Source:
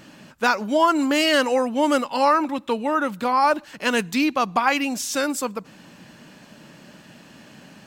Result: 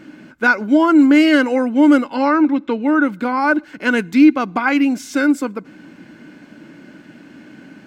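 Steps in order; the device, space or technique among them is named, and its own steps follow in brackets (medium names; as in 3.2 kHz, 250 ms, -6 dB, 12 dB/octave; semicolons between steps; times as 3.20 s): 2.15–2.88 s: low-pass 6.6 kHz 24 dB/octave; inside a helmet (treble shelf 4.3 kHz -8 dB; small resonant body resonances 300/1500/2100 Hz, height 14 dB, ringing for 30 ms); trim -1 dB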